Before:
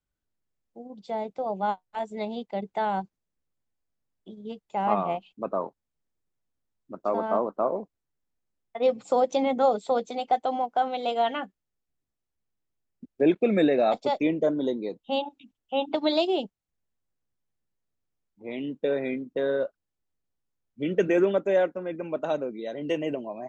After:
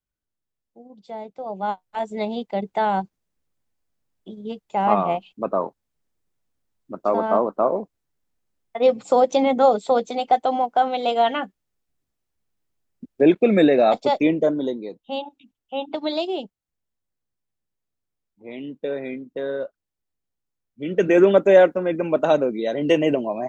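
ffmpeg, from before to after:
-af "volume=17dB,afade=t=in:st=1.38:d=0.75:silence=0.354813,afade=t=out:st=14.3:d=0.56:silence=0.446684,afade=t=in:st=20.83:d=0.58:silence=0.281838"

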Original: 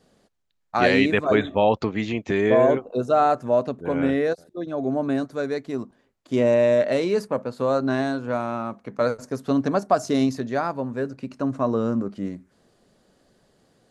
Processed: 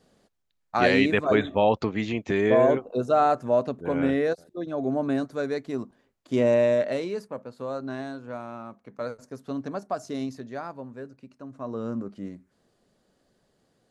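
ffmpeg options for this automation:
-af "volume=8dB,afade=t=out:st=6.57:d=0.64:silence=0.375837,afade=t=out:st=10.75:d=0.74:silence=0.473151,afade=t=in:st=11.49:d=0.43:silence=0.316228"

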